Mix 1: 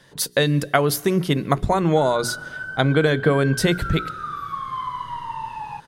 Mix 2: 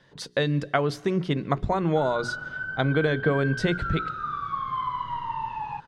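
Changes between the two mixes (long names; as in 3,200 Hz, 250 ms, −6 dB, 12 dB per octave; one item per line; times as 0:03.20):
speech −5.0 dB
master: add high-frequency loss of the air 120 metres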